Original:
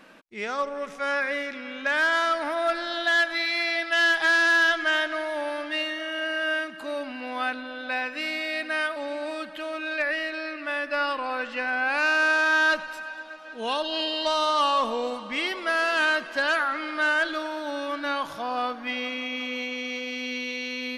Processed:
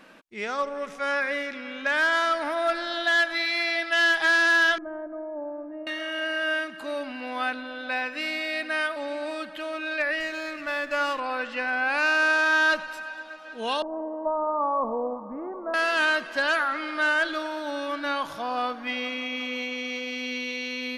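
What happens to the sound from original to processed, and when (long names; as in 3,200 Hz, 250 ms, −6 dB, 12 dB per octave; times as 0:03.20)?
0:04.78–0:05.87: Bessel low-pass filter 540 Hz, order 4
0:10.20–0:11.20: windowed peak hold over 3 samples
0:13.82–0:15.74: Butterworth low-pass 1,100 Hz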